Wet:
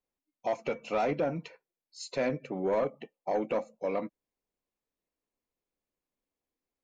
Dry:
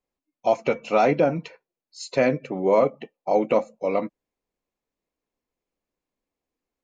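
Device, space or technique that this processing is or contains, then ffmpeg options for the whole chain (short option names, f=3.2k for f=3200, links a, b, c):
soft clipper into limiter: -af "asoftclip=type=tanh:threshold=-13dB,alimiter=limit=-16.5dB:level=0:latency=1:release=323,volume=-5.5dB"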